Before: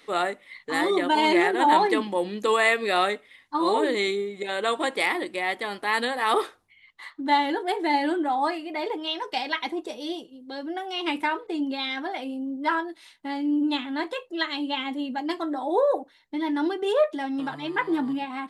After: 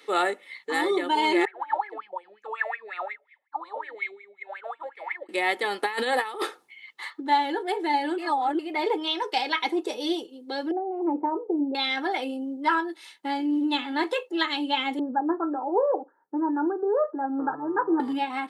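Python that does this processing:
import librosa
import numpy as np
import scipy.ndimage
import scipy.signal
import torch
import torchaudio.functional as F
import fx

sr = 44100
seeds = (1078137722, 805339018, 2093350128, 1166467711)

y = fx.wah_lfo(x, sr, hz=5.5, low_hz=580.0, high_hz=2400.0, q=15.0, at=(1.45, 5.29))
y = fx.over_compress(y, sr, threshold_db=-29.0, ratio=-0.5, at=(5.83, 7.2))
y = fx.cheby2_lowpass(y, sr, hz=4500.0, order=4, stop_db=80, at=(10.71, 11.75))
y = fx.echo_throw(y, sr, start_s=12.85, length_s=0.65, ms=530, feedback_pct=40, wet_db=-17.0)
y = fx.steep_lowpass(y, sr, hz=1600.0, slope=96, at=(14.99, 18.0))
y = fx.edit(y, sr, fx.reverse_span(start_s=8.18, length_s=0.41), tone=tone)
y = scipy.signal.sosfilt(scipy.signal.butter(4, 200.0, 'highpass', fs=sr, output='sos'), y)
y = y + 0.45 * np.pad(y, (int(2.3 * sr / 1000.0), 0))[:len(y)]
y = fx.rider(y, sr, range_db=4, speed_s=0.5)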